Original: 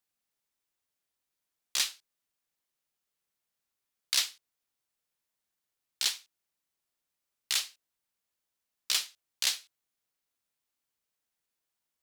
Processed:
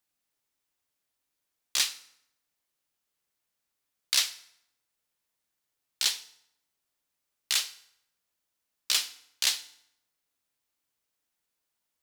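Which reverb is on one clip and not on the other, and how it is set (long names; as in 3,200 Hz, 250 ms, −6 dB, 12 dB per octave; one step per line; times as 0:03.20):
feedback delay network reverb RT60 0.78 s, low-frequency decay 1.05×, high-frequency decay 0.8×, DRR 11.5 dB
level +2.5 dB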